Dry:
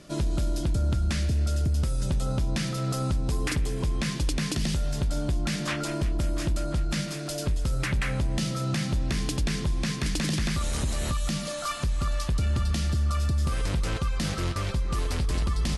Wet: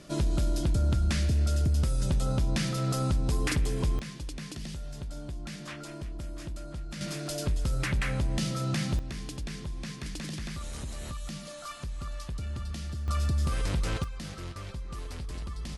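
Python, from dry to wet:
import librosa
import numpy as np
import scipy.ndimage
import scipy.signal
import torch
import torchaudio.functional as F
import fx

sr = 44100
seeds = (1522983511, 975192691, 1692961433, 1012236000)

y = fx.gain(x, sr, db=fx.steps((0.0, -0.5), (3.99, -11.5), (7.01, -2.0), (8.99, -10.0), (13.08, -2.0), (14.04, -11.0)))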